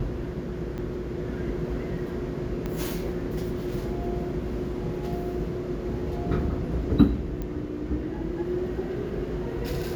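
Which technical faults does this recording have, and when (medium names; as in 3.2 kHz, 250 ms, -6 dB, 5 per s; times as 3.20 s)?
0.78–0.79 s: dropout 6.1 ms
2.66 s: pop -18 dBFS
7.42 s: pop -21 dBFS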